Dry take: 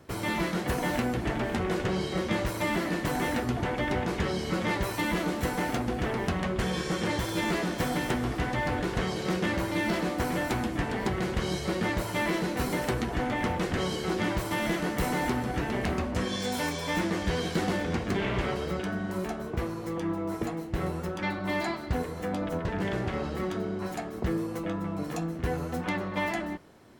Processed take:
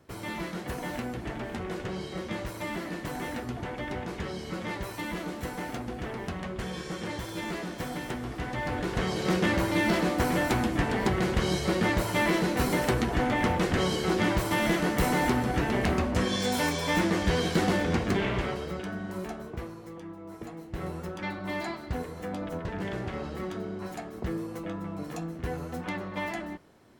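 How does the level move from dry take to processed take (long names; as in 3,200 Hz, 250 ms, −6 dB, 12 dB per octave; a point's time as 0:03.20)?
0:08.27 −6 dB
0:09.33 +3 dB
0:18.05 +3 dB
0:18.68 −3.5 dB
0:19.35 −3.5 dB
0:20.16 −12.5 dB
0:20.92 −3.5 dB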